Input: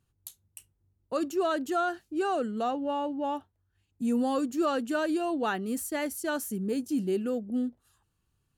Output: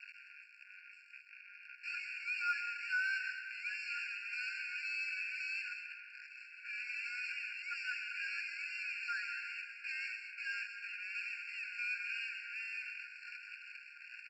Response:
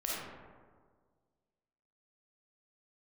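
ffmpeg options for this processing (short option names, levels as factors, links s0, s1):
-filter_complex "[0:a]aeval=exprs='val(0)+0.5*0.0119*sgn(val(0))':c=same,highpass=f=170:t=q:w=0.5412,highpass=f=170:t=q:w=1.307,lowpass=f=3300:t=q:w=0.5176,lowpass=f=3300:t=q:w=0.7071,lowpass=f=3300:t=q:w=1.932,afreqshift=100,asplit=2[s0][s1];[s1]highpass=f=720:p=1,volume=56.2,asoftclip=type=tanh:threshold=0.15[s2];[s0][s2]amix=inputs=2:normalize=0,lowpass=f=1500:p=1,volume=0.501,aresample=16000,acrusher=bits=3:mix=0:aa=0.5,aresample=44100,atempo=0.6,afreqshift=25,asplit=3[s3][s4][s5];[s3]bandpass=f=730:t=q:w=8,volume=1[s6];[s4]bandpass=f=1090:t=q:w=8,volume=0.501[s7];[s5]bandpass=f=2440:t=q:w=8,volume=0.355[s8];[s6][s7][s8]amix=inputs=3:normalize=0,asplit=2[s9][s10];[s10]adelay=1458,volume=0.447,highshelf=f=4000:g=-32.8[s11];[s9][s11]amix=inputs=2:normalize=0,asplit=2[s12][s13];[1:a]atrim=start_sample=2205,highshelf=f=5100:g=6,adelay=129[s14];[s13][s14]afir=irnorm=-1:irlink=0,volume=0.299[s15];[s12][s15]amix=inputs=2:normalize=0,afftfilt=real='re*eq(mod(floor(b*sr/1024/1400),2),1)':imag='im*eq(mod(floor(b*sr/1024/1400),2),1)':win_size=1024:overlap=0.75,volume=2.82"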